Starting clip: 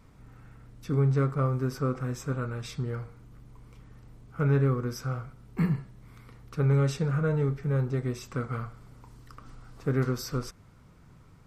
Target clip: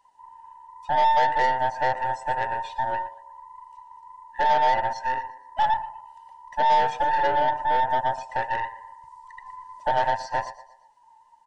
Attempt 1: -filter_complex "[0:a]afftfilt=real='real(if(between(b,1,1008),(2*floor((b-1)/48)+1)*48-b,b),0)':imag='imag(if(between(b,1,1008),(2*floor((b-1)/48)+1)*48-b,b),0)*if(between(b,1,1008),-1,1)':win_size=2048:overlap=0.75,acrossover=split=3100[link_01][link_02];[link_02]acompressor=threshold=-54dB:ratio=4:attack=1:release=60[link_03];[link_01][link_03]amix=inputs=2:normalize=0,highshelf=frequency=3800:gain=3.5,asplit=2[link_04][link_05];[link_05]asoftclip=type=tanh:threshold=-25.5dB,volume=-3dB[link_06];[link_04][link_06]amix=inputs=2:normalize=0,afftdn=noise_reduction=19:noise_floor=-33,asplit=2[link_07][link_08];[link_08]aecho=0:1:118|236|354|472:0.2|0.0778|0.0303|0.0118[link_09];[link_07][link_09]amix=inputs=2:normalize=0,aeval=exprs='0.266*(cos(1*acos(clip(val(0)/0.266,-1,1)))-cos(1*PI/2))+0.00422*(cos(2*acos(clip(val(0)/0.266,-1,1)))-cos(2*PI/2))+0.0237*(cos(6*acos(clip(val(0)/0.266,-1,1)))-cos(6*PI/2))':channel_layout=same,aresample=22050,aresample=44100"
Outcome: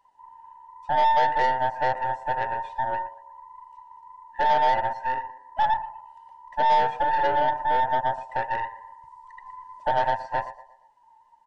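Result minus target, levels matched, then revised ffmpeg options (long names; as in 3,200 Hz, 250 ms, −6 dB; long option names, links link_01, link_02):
8,000 Hz band −8.0 dB
-filter_complex "[0:a]afftfilt=real='real(if(between(b,1,1008),(2*floor((b-1)/48)+1)*48-b,b),0)':imag='imag(if(between(b,1,1008),(2*floor((b-1)/48)+1)*48-b,b),0)*if(between(b,1,1008),-1,1)':win_size=2048:overlap=0.75,acrossover=split=3100[link_01][link_02];[link_02]acompressor=threshold=-54dB:ratio=4:attack=1:release=60[link_03];[link_01][link_03]amix=inputs=2:normalize=0,highshelf=frequency=3800:gain=13.5,asplit=2[link_04][link_05];[link_05]asoftclip=type=tanh:threshold=-25.5dB,volume=-3dB[link_06];[link_04][link_06]amix=inputs=2:normalize=0,afftdn=noise_reduction=19:noise_floor=-33,asplit=2[link_07][link_08];[link_08]aecho=0:1:118|236|354|472:0.2|0.0778|0.0303|0.0118[link_09];[link_07][link_09]amix=inputs=2:normalize=0,aeval=exprs='0.266*(cos(1*acos(clip(val(0)/0.266,-1,1)))-cos(1*PI/2))+0.00422*(cos(2*acos(clip(val(0)/0.266,-1,1)))-cos(2*PI/2))+0.0237*(cos(6*acos(clip(val(0)/0.266,-1,1)))-cos(6*PI/2))':channel_layout=same,aresample=22050,aresample=44100"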